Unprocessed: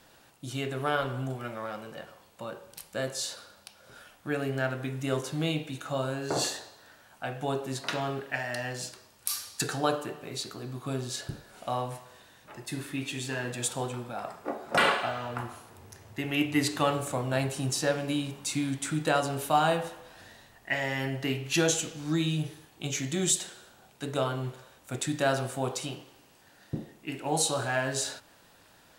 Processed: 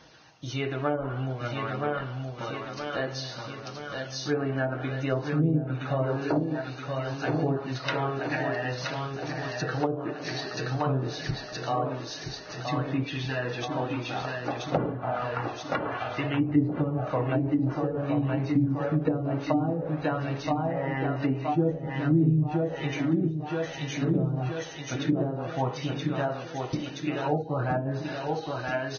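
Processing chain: comb 6.4 ms, depth 33%; feedback delay 973 ms, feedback 59%, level -5 dB; phaser 0.54 Hz, delay 3.6 ms, feedback 27%; low-pass that closes with the level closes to 350 Hz, closed at -21.5 dBFS; trim +2.5 dB; Vorbis 16 kbps 16 kHz

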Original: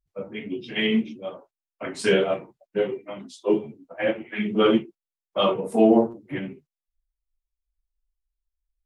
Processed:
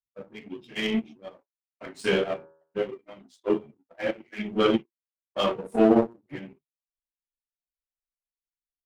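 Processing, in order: power-law waveshaper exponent 1.4; 1.98–2.79 s: de-hum 79.92 Hz, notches 22; endings held to a fixed fall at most 560 dB/s

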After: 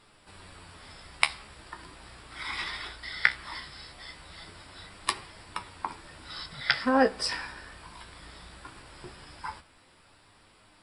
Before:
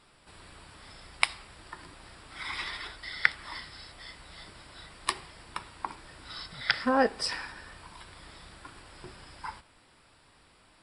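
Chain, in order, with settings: flange 0.19 Hz, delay 9.1 ms, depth 9.3 ms, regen +49%; trim +5.5 dB

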